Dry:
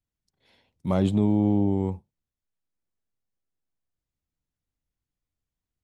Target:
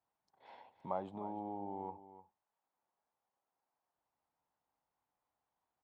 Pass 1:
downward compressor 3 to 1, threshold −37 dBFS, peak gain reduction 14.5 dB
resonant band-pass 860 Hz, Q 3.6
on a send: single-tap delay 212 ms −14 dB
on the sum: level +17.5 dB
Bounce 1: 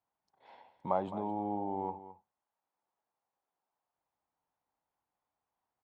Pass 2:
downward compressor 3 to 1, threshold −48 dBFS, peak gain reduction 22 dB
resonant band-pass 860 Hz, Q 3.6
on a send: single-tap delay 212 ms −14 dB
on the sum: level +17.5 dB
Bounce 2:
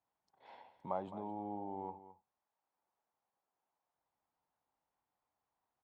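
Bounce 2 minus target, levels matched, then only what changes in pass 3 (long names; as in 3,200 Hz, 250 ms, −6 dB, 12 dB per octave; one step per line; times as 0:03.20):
echo 89 ms early
change: single-tap delay 301 ms −14 dB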